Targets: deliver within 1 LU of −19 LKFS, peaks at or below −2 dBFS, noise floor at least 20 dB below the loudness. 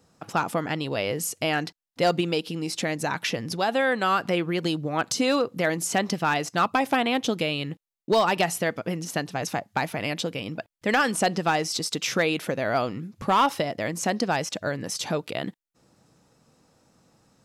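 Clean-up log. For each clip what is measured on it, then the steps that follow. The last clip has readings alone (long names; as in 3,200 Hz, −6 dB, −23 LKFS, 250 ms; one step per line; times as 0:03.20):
share of clipped samples 0.3%; peaks flattened at −14.0 dBFS; integrated loudness −26.0 LKFS; sample peak −14.0 dBFS; target loudness −19.0 LKFS
→ clipped peaks rebuilt −14 dBFS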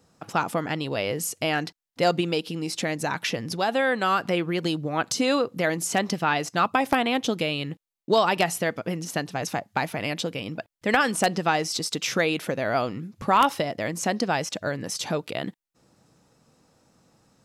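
share of clipped samples 0.0%; integrated loudness −25.5 LKFS; sample peak −5.0 dBFS; target loudness −19.0 LKFS
→ level +6.5 dB
brickwall limiter −2 dBFS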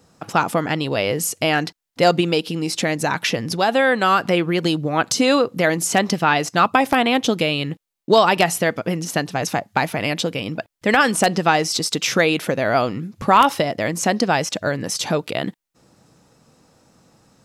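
integrated loudness −19.5 LKFS; sample peak −2.0 dBFS; background noise floor −67 dBFS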